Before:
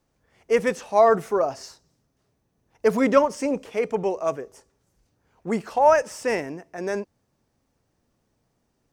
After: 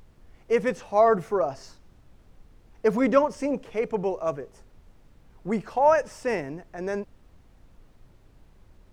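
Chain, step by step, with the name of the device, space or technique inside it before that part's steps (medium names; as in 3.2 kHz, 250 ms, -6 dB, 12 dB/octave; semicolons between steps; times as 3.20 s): car interior (peaking EQ 140 Hz +5 dB; treble shelf 4.8 kHz -8 dB; brown noise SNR 24 dB); trim -2.5 dB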